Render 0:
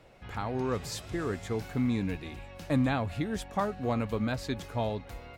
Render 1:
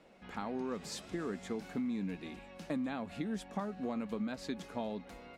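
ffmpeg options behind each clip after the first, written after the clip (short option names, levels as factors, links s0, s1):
-af "lowpass=11000,lowshelf=f=150:t=q:w=3:g=-8.5,acompressor=threshold=0.0355:ratio=6,volume=0.596"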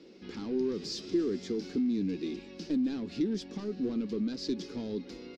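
-filter_complex "[0:a]highshelf=f=6300:g=5,asplit=2[s0][s1];[s1]highpass=f=720:p=1,volume=11.2,asoftclip=type=tanh:threshold=0.0668[s2];[s0][s2]amix=inputs=2:normalize=0,lowpass=f=1100:p=1,volume=0.501,firequalizer=gain_entry='entry(200,0);entry(350,7);entry(640,-20);entry(5000,10);entry(8700,-11)':delay=0.05:min_phase=1,volume=1.19"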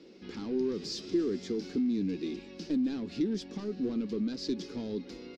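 -af anull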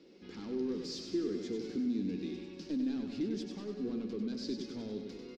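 -af "aecho=1:1:97|194|291|388|485|582|679:0.501|0.276|0.152|0.0834|0.0459|0.0252|0.0139,volume=0.531"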